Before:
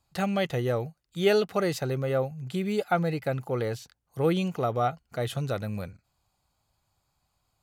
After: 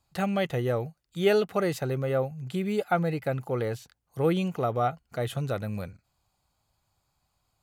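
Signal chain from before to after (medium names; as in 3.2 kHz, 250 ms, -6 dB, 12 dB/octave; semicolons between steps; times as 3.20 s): dynamic bell 5 kHz, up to -5 dB, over -52 dBFS, Q 1.3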